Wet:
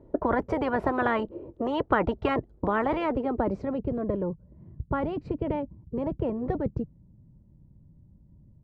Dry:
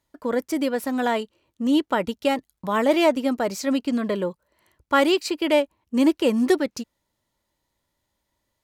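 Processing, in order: low-pass sweep 430 Hz -> 160 Hz, 2.47–4; spectral compressor 10:1

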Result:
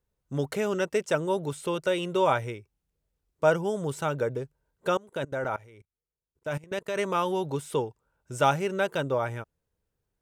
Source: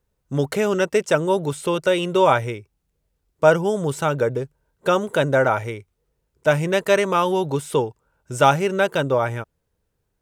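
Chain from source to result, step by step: 4.97–6.99 level quantiser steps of 22 dB; gain -7.5 dB

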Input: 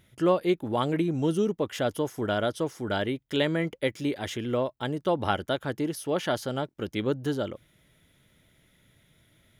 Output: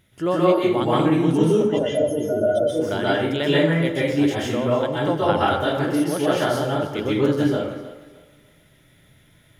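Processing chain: 1.62–2.68 spectral contrast raised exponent 2.9; on a send: thinning echo 0.306 s, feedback 30%, high-pass 230 Hz, level -15 dB; on the sum: plate-style reverb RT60 0.73 s, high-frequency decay 0.6×, pre-delay 0.115 s, DRR -7 dB

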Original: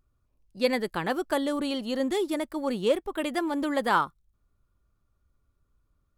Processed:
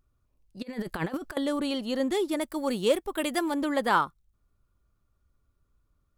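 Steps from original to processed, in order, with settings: 0.62–1.37 negative-ratio compressor -33 dBFS, ratio -0.5; 2.41–3.54 high shelf 4800 Hz +8.5 dB

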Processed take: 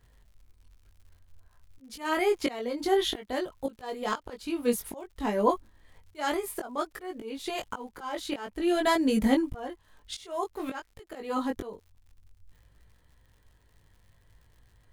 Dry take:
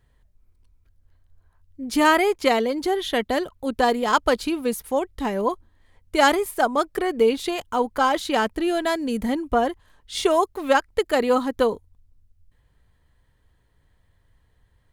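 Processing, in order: auto swell 0.653 s; chorus 0.54 Hz, delay 18.5 ms, depth 2.3 ms; crackle 120/s -57 dBFS; gain +4 dB

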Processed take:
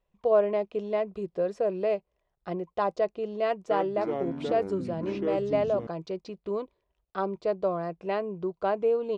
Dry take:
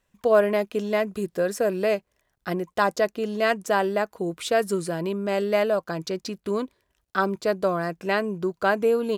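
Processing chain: fifteen-band EQ 100 Hz -12 dB, 250 Hz -11 dB, 1600 Hz -11 dB; 3.44–5.87 echoes that change speed 0.264 s, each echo -6 st, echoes 3, each echo -6 dB; tape spacing loss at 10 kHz 32 dB

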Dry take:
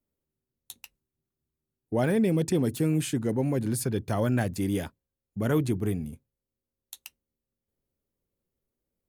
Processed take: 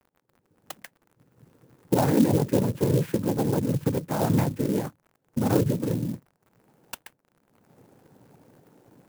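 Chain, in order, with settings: recorder AGC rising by 39 dB/s; noise vocoder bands 8; crackle 72/s -41 dBFS; LPF 1600 Hz 12 dB/oct; clock jitter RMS 0.058 ms; gain +3 dB

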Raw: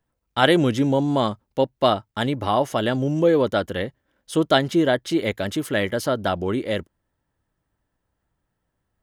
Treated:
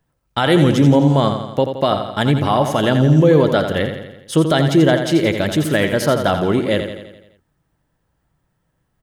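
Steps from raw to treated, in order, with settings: bell 150 Hz +8.5 dB 0.31 oct; limiter -11 dBFS, peak gain reduction 9 dB; on a send: feedback echo 85 ms, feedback 56%, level -8 dB; on the sum: gain +6 dB

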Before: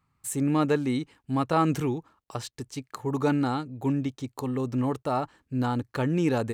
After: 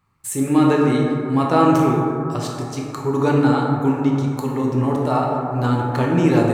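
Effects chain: plate-style reverb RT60 2.7 s, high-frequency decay 0.3×, DRR -2.5 dB; gain +4.5 dB

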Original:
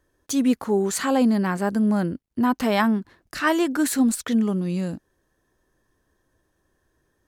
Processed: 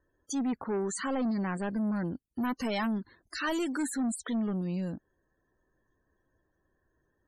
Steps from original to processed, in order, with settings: 2.11–3.85 high shelf 3900 Hz -> 2700 Hz +9.5 dB; soft clip -21 dBFS, distortion -10 dB; loudest bins only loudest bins 64; gain -5.5 dB

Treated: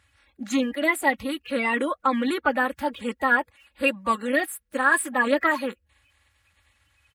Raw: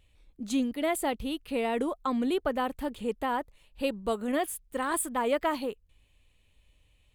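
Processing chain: bin magnitudes rounded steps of 30 dB; HPF 64 Hz 24 dB/oct; bell 1700 Hz +14 dB 1.6 oct; comb 3.6 ms

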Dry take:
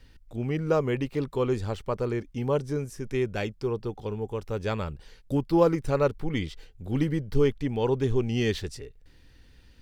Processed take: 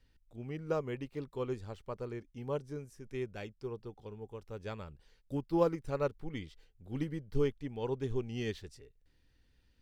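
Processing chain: upward expander 1.5:1, over -32 dBFS; gain -7 dB

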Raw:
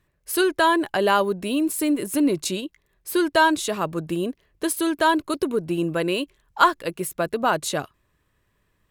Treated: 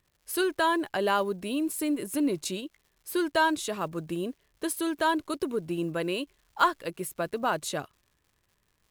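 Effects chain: block floating point 7-bit; crackle 190/s -47 dBFS; gain -6.5 dB

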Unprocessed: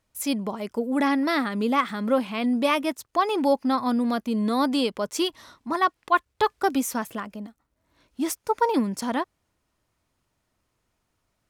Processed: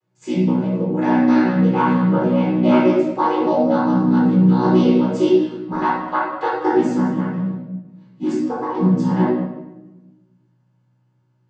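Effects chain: chord vocoder major triad, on B2; 5.73–6.63 HPF 550 Hz 6 dB/oct; 8.37–8.81 compressor 4:1, threshold -28 dBFS, peak gain reduction 8.5 dB; reverb RT60 1.0 s, pre-delay 10 ms, DRR -7 dB; gain -1.5 dB

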